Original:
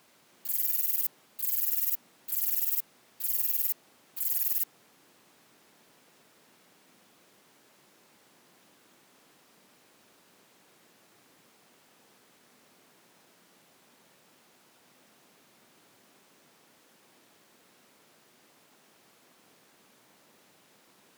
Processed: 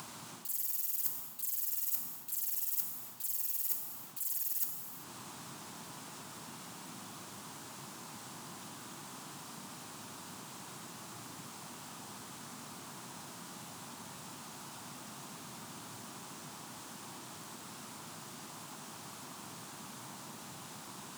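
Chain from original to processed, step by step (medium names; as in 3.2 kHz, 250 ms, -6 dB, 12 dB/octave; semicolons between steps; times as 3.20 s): high-pass 56 Hz; treble shelf 3.4 kHz -7 dB; gated-style reverb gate 430 ms falling, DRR 12 dB; in parallel at +0.5 dB: upward compressor, threshold -40 dBFS; on the sum: graphic EQ 125/500/1000/2000/8000 Hz +6/-11/+5/-7/+7 dB; reverse; compression 10:1, threshold -32 dBFS, peak gain reduction 10.5 dB; reverse; trim +2 dB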